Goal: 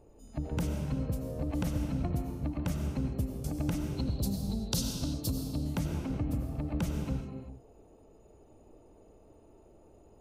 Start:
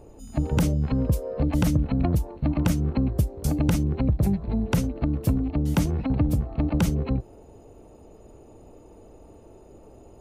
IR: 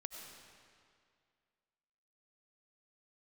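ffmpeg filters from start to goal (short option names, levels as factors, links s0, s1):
-filter_complex "[0:a]asettb=1/sr,asplit=3[s0][s1][s2];[s0]atrim=end=3.894[s3];[s1]atrim=start=3.89:end=5.65,asetpts=PTS-STARTPTS,afade=t=in:d=0.004:c=qsin,afade=t=out:st=1.756:d=0.004:c=qsin,highshelf=f=3000:t=q:w=3:g=12[s4];[s2]atrim=start=5.646[s5];[s3][s4]acrossfade=d=0.004:c1=hsin:c2=qsin[s6];[s6][s5]acrossfade=d=0.004:c1=qsin:c2=hsin[s7];[1:a]atrim=start_sample=2205,afade=t=out:st=0.45:d=0.01,atrim=end_sample=20286[s8];[s7][s8]afir=irnorm=-1:irlink=0,volume=0.501"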